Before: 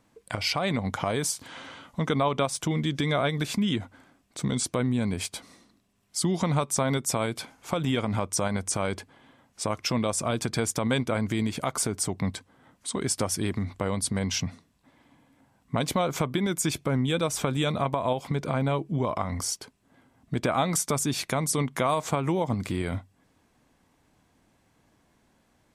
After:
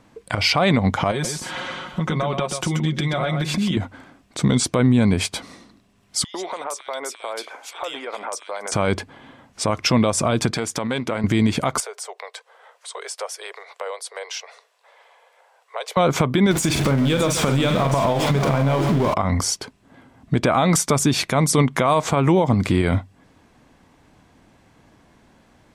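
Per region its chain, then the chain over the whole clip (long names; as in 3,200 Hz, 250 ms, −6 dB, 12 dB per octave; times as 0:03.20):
0:01.11–0:03.77: comb filter 5.5 ms, depth 66% + downward compressor, threshold −31 dBFS + single-tap delay 130 ms −7 dB
0:06.24–0:08.72: high-pass filter 460 Hz 24 dB per octave + downward compressor 5 to 1, threshold −36 dBFS + multiband delay without the direct sound highs, lows 100 ms, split 2,200 Hz
0:10.51–0:11.24: downward compressor, threshold −29 dBFS + high-pass filter 220 Hz 6 dB per octave + highs frequency-modulated by the lows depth 0.12 ms
0:11.80–0:15.97: Butterworth high-pass 440 Hz 72 dB per octave + downward compressor 1.5 to 1, threshold −55 dBFS
0:16.51–0:19.14: converter with a step at zero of −29 dBFS + multi-tap delay 44/141/612 ms −8.5/−13.5/−10 dB + downward compressor 10 to 1, threshold −26 dBFS
whole clip: high-shelf EQ 8,100 Hz −11.5 dB; boost into a limiter +18 dB; level −6.5 dB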